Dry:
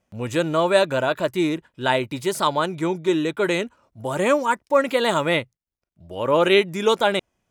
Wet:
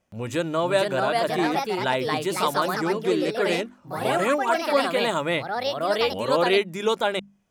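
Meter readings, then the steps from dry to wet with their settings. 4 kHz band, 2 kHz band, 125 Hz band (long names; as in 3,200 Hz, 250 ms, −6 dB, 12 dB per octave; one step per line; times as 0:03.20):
−1.0 dB, −1.5 dB, −3.5 dB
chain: mains-hum notches 50/100/150/200/250 Hz
in parallel at −1 dB: downward compressor, threshold −32 dBFS, peak gain reduction 18.5 dB
on the sum: delay with pitch and tempo change per echo 524 ms, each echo +3 semitones, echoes 2
level −5.5 dB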